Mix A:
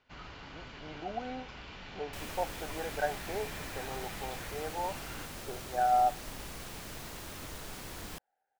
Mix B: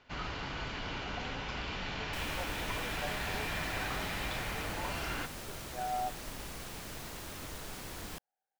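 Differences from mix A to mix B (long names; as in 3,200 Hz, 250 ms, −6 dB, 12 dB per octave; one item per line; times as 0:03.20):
speech −10.0 dB
first sound +8.5 dB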